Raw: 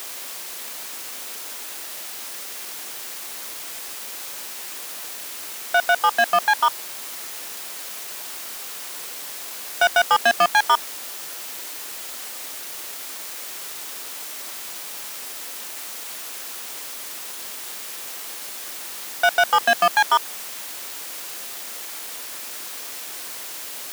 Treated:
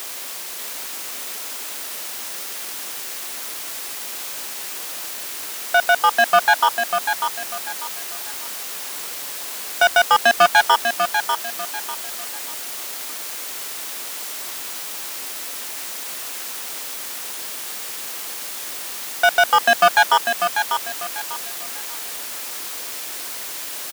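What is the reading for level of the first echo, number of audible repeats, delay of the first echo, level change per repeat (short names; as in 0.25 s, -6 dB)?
-6.5 dB, 3, 0.595 s, -10.5 dB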